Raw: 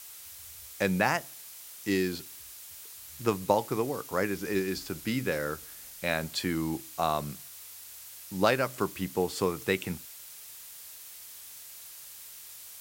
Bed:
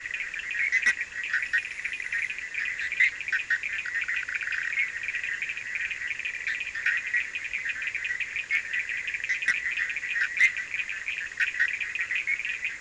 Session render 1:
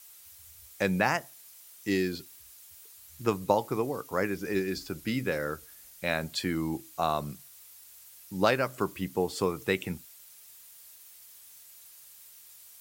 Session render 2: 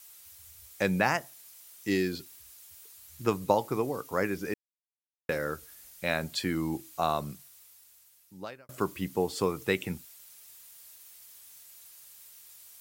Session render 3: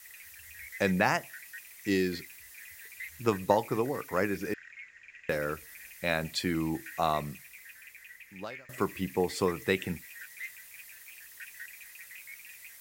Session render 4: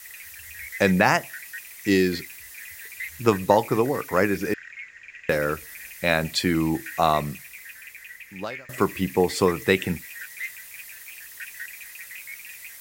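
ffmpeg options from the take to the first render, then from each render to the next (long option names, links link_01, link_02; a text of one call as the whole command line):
ffmpeg -i in.wav -af "afftdn=noise_reduction=8:noise_floor=-47" out.wav
ffmpeg -i in.wav -filter_complex "[0:a]asplit=4[link_01][link_02][link_03][link_04];[link_01]atrim=end=4.54,asetpts=PTS-STARTPTS,afade=type=out:start_time=4.536:duration=0.004:curve=hsin[link_05];[link_02]atrim=start=4.54:end=5.29,asetpts=PTS-STARTPTS,volume=0[link_06];[link_03]atrim=start=5.29:end=8.69,asetpts=PTS-STARTPTS,afade=type=in:duration=0.004:curve=hsin,afade=type=out:start_time=1.82:duration=1.58[link_07];[link_04]atrim=start=8.69,asetpts=PTS-STARTPTS,afade=type=in:duration=0.004:curve=hsin[link_08];[link_05][link_06][link_07][link_08]concat=n=4:v=0:a=1" out.wav
ffmpeg -i in.wav -i bed.wav -filter_complex "[1:a]volume=-20.5dB[link_01];[0:a][link_01]amix=inputs=2:normalize=0" out.wav
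ffmpeg -i in.wav -af "volume=8dB,alimiter=limit=-3dB:level=0:latency=1" out.wav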